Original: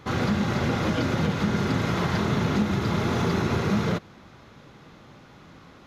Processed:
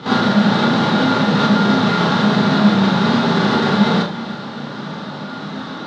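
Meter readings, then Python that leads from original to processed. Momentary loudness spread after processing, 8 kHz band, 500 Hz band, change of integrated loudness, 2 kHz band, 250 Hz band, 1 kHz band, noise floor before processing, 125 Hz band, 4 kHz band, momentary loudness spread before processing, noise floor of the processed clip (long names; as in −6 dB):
14 LU, can't be measured, +9.0 dB, +10.0 dB, +10.5 dB, +11.5 dB, +12.5 dB, −50 dBFS, +5.5 dB, +14.0 dB, 1 LU, −30 dBFS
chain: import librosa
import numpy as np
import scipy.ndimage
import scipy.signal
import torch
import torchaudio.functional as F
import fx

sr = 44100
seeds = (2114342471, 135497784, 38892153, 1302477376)

p1 = fx.halfwave_hold(x, sr)
p2 = fx.over_compress(p1, sr, threshold_db=-25.0, ratio=-0.5)
p3 = p1 + (p2 * 10.0 ** (3.0 / 20.0))
p4 = np.clip(p3, -10.0 ** (-17.0 / 20.0), 10.0 ** (-17.0 / 20.0))
p5 = fx.cabinet(p4, sr, low_hz=140.0, low_slope=24, high_hz=4900.0, hz=(190.0, 860.0, 1400.0, 2400.0, 3800.0), db=(6, 5, 7, -6, 9))
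p6 = p5 + fx.echo_single(p5, sr, ms=322, db=-16.0, dry=0)
p7 = fx.rev_schroeder(p6, sr, rt60_s=0.33, comb_ms=27, drr_db=-5.5)
y = p7 * 10.0 ** (-4.5 / 20.0)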